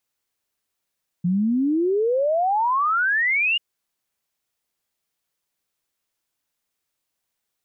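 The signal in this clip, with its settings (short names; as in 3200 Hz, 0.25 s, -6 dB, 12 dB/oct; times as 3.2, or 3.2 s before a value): log sweep 170 Hz -> 2900 Hz 2.34 s -17.5 dBFS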